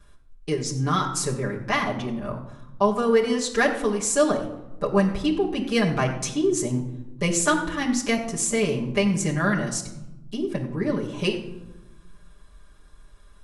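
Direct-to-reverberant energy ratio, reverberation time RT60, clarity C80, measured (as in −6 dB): −5.5 dB, 1.0 s, 10.5 dB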